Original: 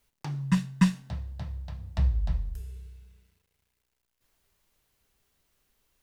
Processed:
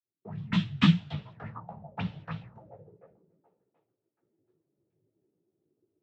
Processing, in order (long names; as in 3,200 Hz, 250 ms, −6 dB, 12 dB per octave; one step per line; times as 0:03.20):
fade in at the beginning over 0.74 s
cochlear-implant simulation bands 12
multi-voice chorus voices 4, 0.92 Hz, delay 15 ms, depth 4.1 ms
on a send: echo through a band-pass that steps 732 ms, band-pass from 680 Hz, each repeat 0.7 octaves, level −10.5 dB
on the sum: envelope-controlled low-pass 330–3,300 Hz up, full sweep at −38.5 dBFS
level +4 dB